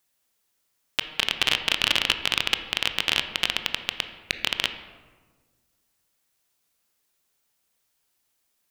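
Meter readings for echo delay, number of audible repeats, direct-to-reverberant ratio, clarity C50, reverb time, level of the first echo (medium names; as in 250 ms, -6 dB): no echo, no echo, 8.0 dB, 9.5 dB, 1.5 s, no echo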